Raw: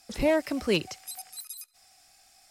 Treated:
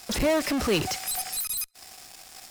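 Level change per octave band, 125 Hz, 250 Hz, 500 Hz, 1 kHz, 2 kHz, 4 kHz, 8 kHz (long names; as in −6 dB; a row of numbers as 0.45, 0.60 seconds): +4.5, +2.0, +0.5, +6.0, +3.0, +5.0, +11.0 decibels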